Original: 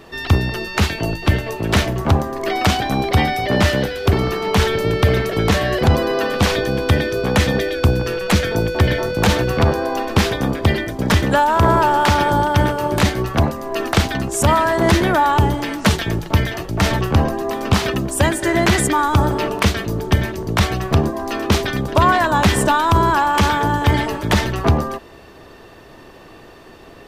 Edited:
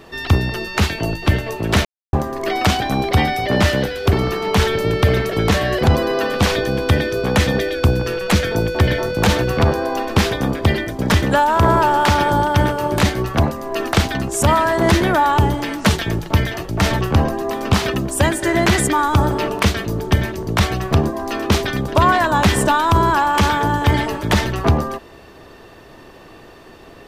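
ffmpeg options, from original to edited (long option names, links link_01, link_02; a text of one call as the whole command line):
ffmpeg -i in.wav -filter_complex "[0:a]asplit=3[link_01][link_02][link_03];[link_01]atrim=end=1.85,asetpts=PTS-STARTPTS,afade=type=out:start_time=1.846:duration=0.004:curve=hsin[link_04];[link_02]atrim=start=1.85:end=2.13,asetpts=PTS-STARTPTS,volume=0[link_05];[link_03]atrim=start=2.13,asetpts=PTS-STARTPTS,afade=type=in:duration=0.004:curve=hsin[link_06];[link_04][link_05][link_06]concat=n=3:v=0:a=1" out.wav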